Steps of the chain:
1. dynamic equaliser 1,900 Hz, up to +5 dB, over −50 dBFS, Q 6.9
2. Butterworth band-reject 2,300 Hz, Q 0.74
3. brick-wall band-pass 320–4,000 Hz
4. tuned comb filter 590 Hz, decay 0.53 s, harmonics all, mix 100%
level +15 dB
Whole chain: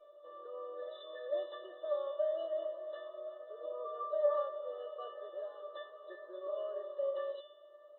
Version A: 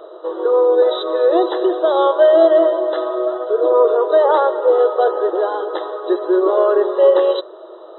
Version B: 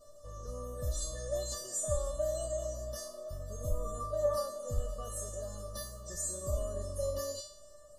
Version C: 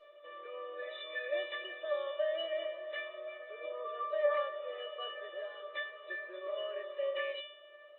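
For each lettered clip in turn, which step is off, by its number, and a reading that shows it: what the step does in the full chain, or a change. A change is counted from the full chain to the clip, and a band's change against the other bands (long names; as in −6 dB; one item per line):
4, change in crest factor −5.5 dB
3, change in crest factor −2.5 dB
2, change in momentary loudness spread −3 LU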